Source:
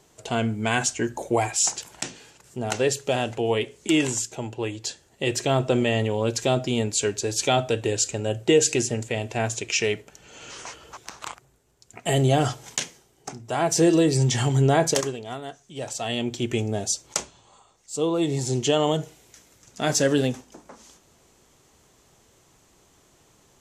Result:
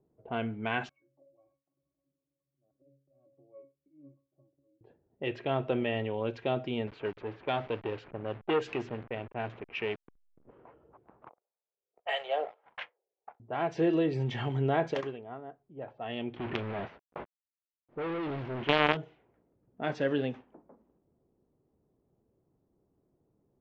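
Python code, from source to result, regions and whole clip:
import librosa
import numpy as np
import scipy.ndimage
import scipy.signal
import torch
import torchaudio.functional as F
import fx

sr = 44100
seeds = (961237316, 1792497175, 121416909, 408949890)

y = fx.chain(x, sr, fx.highpass(hz=370.0, slope=6),
    fx.auto_swell(attack_ms=236.0),
    fx.octave_resonator(note='C#', decay_s=0.32), at=(0.89, 4.81))
y = fx.chain(y, sr, fx.delta_hold(step_db=-32.0),
    fx.transformer_sat(knee_hz=850.0), at=(6.87, 10.51))
y = fx.chain(y, sr, fx.cheby1_highpass(hz=490.0, order=4),
    fx.harmonic_tremolo(hz=1.7, depth_pct=100, crossover_hz=640.0),
    fx.leveller(passes=2), at=(11.29, 13.4))
y = fx.chain(y, sr, fx.quant_companded(bits=2),
    fx.high_shelf(hz=6800.0, db=-5.5), at=(16.36, 18.97))
y = scipy.signal.sosfilt(scipy.signal.butter(4, 3000.0, 'lowpass', fs=sr, output='sos'), y)
y = fx.low_shelf(y, sr, hz=98.0, db=-10.0)
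y = fx.env_lowpass(y, sr, base_hz=370.0, full_db=-20.5)
y = y * 10.0 ** (-7.5 / 20.0)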